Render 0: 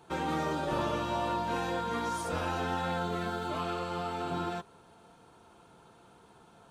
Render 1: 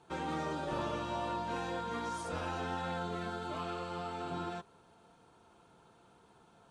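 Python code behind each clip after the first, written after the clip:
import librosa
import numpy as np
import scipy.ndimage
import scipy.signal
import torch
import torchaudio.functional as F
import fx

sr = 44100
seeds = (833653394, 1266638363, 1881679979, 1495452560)

y = scipy.signal.sosfilt(scipy.signal.butter(4, 10000.0, 'lowpass', fs=sr, output='sos'), x)
y = y * librosa.db_to_amplitude(-5.0)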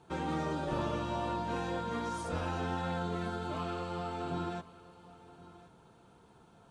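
y = fx.low_shelf(x, sr, hz=320.0, db=6.5)
y = y + 10.0 ** (-19.0 / 20.0) * np.pad(y, (int(1074 * sr / 1000.0), 0))[:len(y)]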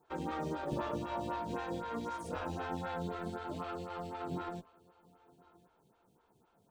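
y = fx.law_mismatch(x, sr, coded='A')
y = fx.stagger_phaser(y, sr, hz=3.9)
y = y * librosa.db_to_amplitude(1.5)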